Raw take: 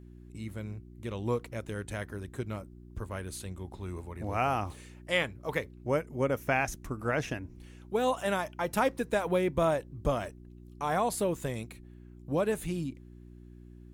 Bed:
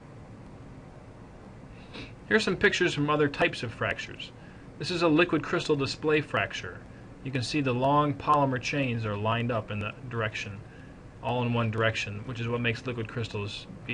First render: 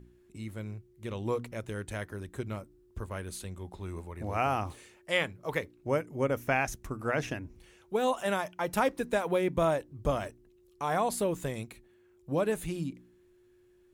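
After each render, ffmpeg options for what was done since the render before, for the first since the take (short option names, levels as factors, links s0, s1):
-af "bandreject=f=60:t=h:w=4,bandreject=f=120:t=h:w=4,bandreject=f=180:t=h:w=4,bandreject=f=240:t=h:w=4,bandreject=f=300:t=h:w=4"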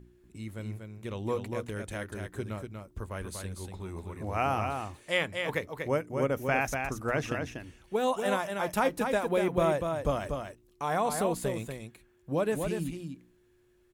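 -af "aecho=1:1:240:0.531"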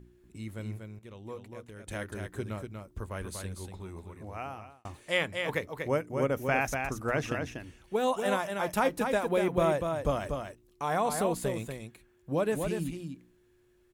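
-filter_complex "[0:a]asplit=4[s0][s1][s2][s3];[s0]atrim=end=0.992[s4];[s1]atrim=start=0.988:end=1.872,asetpts=PTS-STARTPTS,volume=0.299[s5];[s2]atrim=start=1.868:end=4.85,asetpts=PTS-STARTPTS,afade=t=out:st=1.612:d=1.37[s6];[s3]atrim=start=4.85,asetpts=PTS-STARTPTS,afade=t=in:d=0.004:c=hsin[s7];[s4][s5]acrossfade=d=0.004:c1=hsin:c2=hsin[s8];[s6][s7]concat=n=2:v=0:a=1[s9];[s8][s9]acrossfade=d=0.004:c1=hsin:c2=hsin"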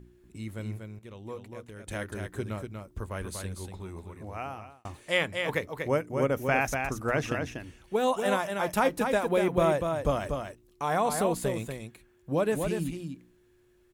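-af "volume=1.26"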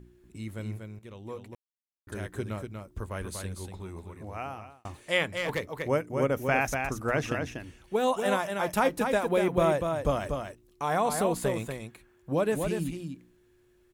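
-filter_complex "[0:a]asettb=1/sr,asplit=3[s0][s1][s2];[s0]atrim=end=5.294[s3];[s1]atrim=start=5.29:end=5.87,asetpts=PTS-STARTPTS,afade=t=in:d=0.004:c=qsin,afade=t=out:st=0.576:d=0.004:c=qsin,asoftclip=type=hard:threshold=0.0631[s4];[s2]atrim=start=5.866[s5];[s3][s4]acrossfade=d=0.004:c1=hsin:c2=qsin[s6];[s6][s5]acrossfade=d=0.004:c1=qsin:c2=hsin,asettb=1/sr,asplit=3[s7][s8][s9];[s7]atrim=end=11.354[s10];[s8]atrim=start=11.35:end=12.34,asetpts=PTS-STARTPTS,afade=t=in:d=0.004:c=qsin,afade=t=out:st=0.986:d=0.004:c=qsin,equalizer=f=1100:t=o:w=1.7:g=4.5[s11];[s9]atrim=start=12.336[s12];[s10][s11]acrossfade=d=0.004:c1=hsin:c2=qsin[s13];[s13][s12]acrossfade=d=0.004:c1=qsin:c2=hsin,asplit=3[s14][s15][s16];[s14]atrim=end=1.55,asetpts=PTS-STARTPTS,afade=t=out:st=1.546:d=0.004:c=hsin[s17];[s15]atrim=start=1.55:end=2.07,asetpts=PTS-STARTPTS,volume=0[s18];[s16]atrim=start=2.07,asetpts=PTS-STARTPTS,afade=t=in:d=0.004:c=hsin[s19];[s17][s18][s19]concat=n=3:v=0:a=1"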